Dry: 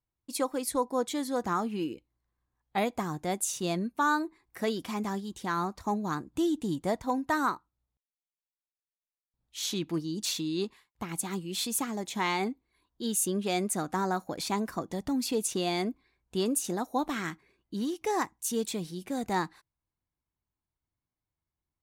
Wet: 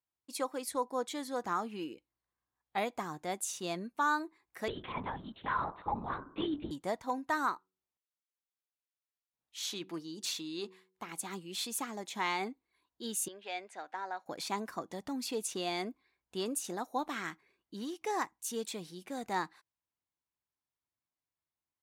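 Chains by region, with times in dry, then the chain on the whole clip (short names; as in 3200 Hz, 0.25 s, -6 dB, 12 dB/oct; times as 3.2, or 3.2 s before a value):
4.68–6.71 comb 3.9 ms, depth 75% + de-hum 73.47 Hz, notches 22 + LPC vocoder at 8 kHz whisper
7.54–11.19 low shelf 120 Hz -11 dB + de-hum 93.79 Hz, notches 5
13.28–14.26 BPF 710–3000 Hz + bell 1200 Hz -12.5 dB 0.33 oct
whole clip: HPF 1100 Hz 6 dB/oct; tilt -2 dB/oct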